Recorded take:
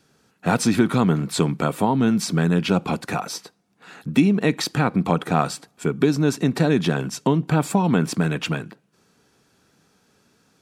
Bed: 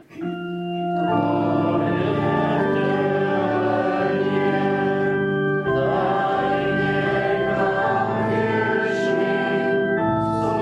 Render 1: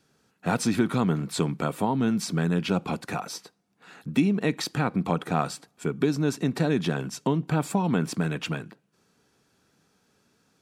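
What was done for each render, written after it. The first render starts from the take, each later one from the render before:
level −5.5 dB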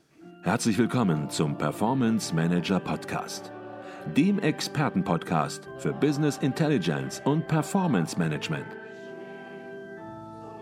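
mix in bed −20.5 dB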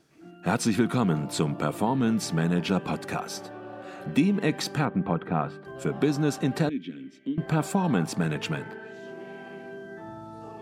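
0:04.85–0:05.65: high-frequency loss of the air 480 metres
0:06.69–0:07.38: formant filter i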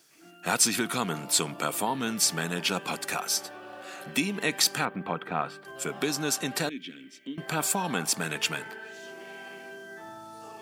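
spectral tilt +4 dB per octave
notch filter 3,900 Hz, Q 24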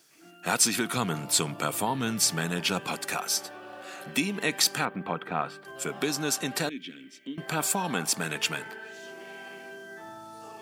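0:00.96–0:02.88: parametric band 110 Hz +9.5 dB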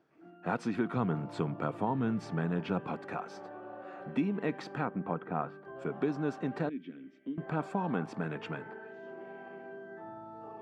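low-pass filter 1,000 Hz 12 dB per octave
dynamic equaliser 720 Hz, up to −3 dB, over −43 dBFS, Q 0.96

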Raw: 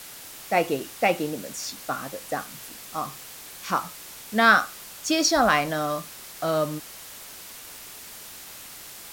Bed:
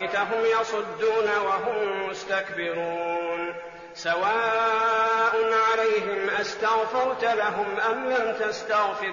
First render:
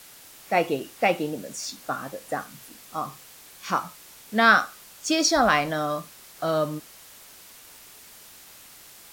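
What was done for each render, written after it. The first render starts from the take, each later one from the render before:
noise reduction from a noise print 6 dB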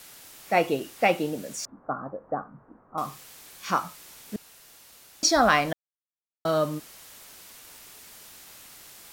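0:01.65–0:02.98: Butterworth low-pass 1,300 Hz
0:04.36–0:05.23: fill with room tone
0:05.73–0:06.45: silence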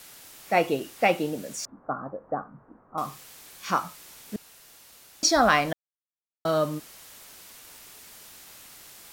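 no processing that can be heard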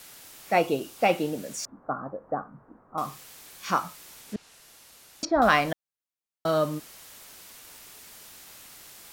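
0:00.57–0:01.10: parametric band 1,900 Hz −8 dB 0.42 octaves
0:04.21–0:05.42: treble cut that deepens with the level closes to 1,100 Hz, closed at −21.5 dBFS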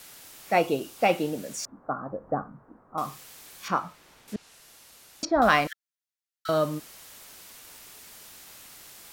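0:02.10–0:02.52: low-shelf EQ 250 Hz +9 dB
0:03.68–0:04.28: low-pass filter 1,800 Hz 6 dB per octave
0:05.67–0:06.49: Chebyshev high-pass with heavy ripple 1,300 Hz, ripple 3 dB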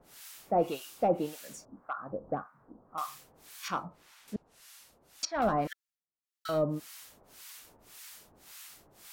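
soft clipping −14.5 dBFS, distortion −17 dB
two-band tremolo in antiphase 1.8 Hz, depth 100%, crossover 910 Hz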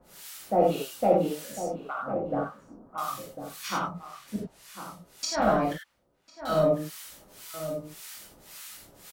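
slap from a distant wall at 180 metres, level −10 dB
reverb whose tail is shaped and stops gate 120 ms flat, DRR −3.5 dB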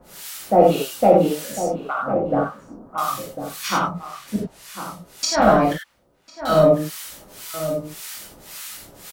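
level +9 dB
brickwall limiter −2 dBFS, peak gain reduction 2 dB

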